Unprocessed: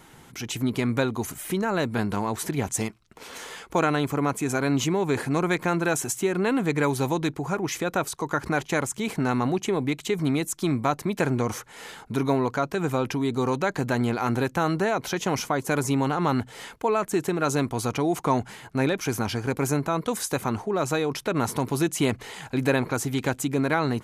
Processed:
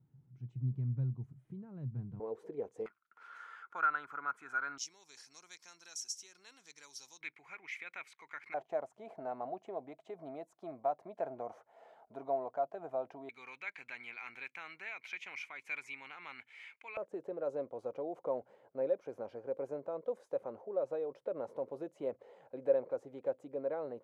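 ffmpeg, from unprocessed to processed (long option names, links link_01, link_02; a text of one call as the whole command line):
ffmpeg -i in.wav -af "asetnsamples=nb_out_samples=441:pad=0,asendcmd='2.2 bandpass f 470;2.86 bandpass f 1400;4.78 bandpass f 5500;7.21 bandpass f 2200;8.54 bandpass f 660;13.29 bandpass f 2300;16.97 bandpass f 540',bandpass=frequency=130:width_type=q:width=10:csg=0" out.wav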